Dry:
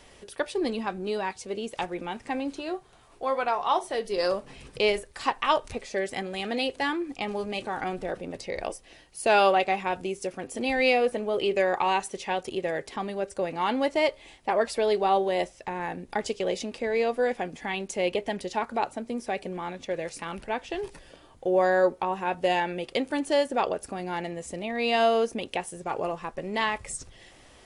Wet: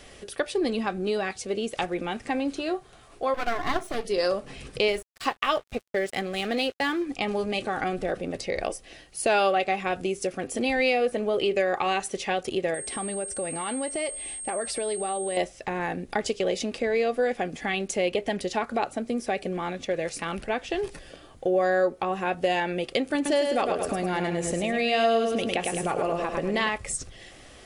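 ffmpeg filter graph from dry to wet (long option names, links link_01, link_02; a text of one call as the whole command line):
ffmpeg -i in.wav -filter_complex "[0:a]asettb=1/sr,asplit=3[link_01][link_02][link_03];[link_01]atrim=end=3.344[link_04];[link_02]atrim=start=3.34:end=4.05,asetpts=PTS-STARTPTS,afade=type=in:duration=0.004:curve=qsin,afade=type=out:start_time=0.706:duration=0.004:curve=qsin,aecho=1:1:2.9:0.57,atrim=end_sample=31311,aeval=exprs='max(val(0),0)':channel_layout=same[link_05];[link_03]atrim=start=4.046[link_06];[link_04][link_05]acrossfade=duration=0.004:curve1=hsin:curve2=qsin[link_07];[link_07][link_06]acrossfade=duration=0.004:curve1=qsin:curve2=hsin,asettb=1/sr,asplit=3[link_08][link_09][link_10];[link_08]atrim=end=4.884[link_11];[link_09]atrim=start=4.88:end=7.06,asetpts=PTS-STARTPTS,afade=type=in:duration=0.004:curve=qsin,afade=type=out:start_time=2.176:duration=0.004:curve=qsin,agate=range=-15dB:threshold=-40dB:ratio=16:release=100:detection=peak,aeval=exprs='sgn(val(0))*max(abs(val(0))-0.00447,0)':channel_layout=same[link_12];[link_10]atrim=start=7.056[link_13];[link_11][link_12]acrossfade=duration=0.004:curve1=hsin:curve2=qsin[link_14];[link_14][link_13]acrossfade=duration=0.004:curve1=qsin:curve2=hsin,asettb=1/sr,asplit=3[link_15][link_16][link_17];[link_15]atrim=end=12.744[link_18];[link_16]atrim=start=12.74:end=15.37,asetpts=PTS-STARTPTS,afade=type=in:duration=0.004:curve=qsin,afade=type=out:start_time=2.626:duration=0.004:curve=qsin,acompressor=threshold=-34dB:ratio=3:attack=3.2:release=140:knee=1:detection=peak,aeval=exprs='val(0)+0.0112*sin(2*PI*8500*n/s)':channel_layout=same[link_19];[link_17]atrim=start=15.366[link_20];[link_18][link_19]acrossfade=duration=0.004:curve1=hsin:curve2=qsin[link_21];[link_21][link_20]acrossfade=duration=0.004:curve1=qsin:curve2=hsin,asettb=1/sr,asplit=3[link_22][link_23][link_24];[link_22]atrim=end=23.154[link_25];[link_23]atrim=start=23.15:end=26.69,asetpts=PTS-STARTPTS,afade=type=in:duration=0.004:curve=qsin,afade=type=out:start_time=3.536:duration=0.004:curve=qsin,aecho=1:1:105|210|315|420:0.501|0.175|0.0614|0.0215,atrim=end_sample=156114,acompressor=mode=upward:threshold=-24dB:ratio=2.5:attack=3.2:release=140:knee=2.83:detection=peak[link_26];[link_24]atrim=start=26.686[link_27];[link_25][link_26]acrossfade=duration=0.004:curve1=hsin:curve2=qsin[link_28];[link_28][link_27]acrossfade=duration=0.004:curve1=qsin:curve2=hsin,bandreject=frequency=940:width=5.5,acompressor=threshold=-29dB:ratio=2,volume=5dB" out.wav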